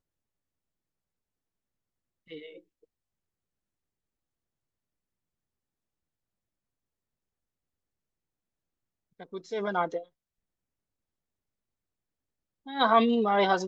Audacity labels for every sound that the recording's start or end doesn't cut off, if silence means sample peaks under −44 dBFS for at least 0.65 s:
2.300000	2.590000	sound
9.200000	10.040000	sound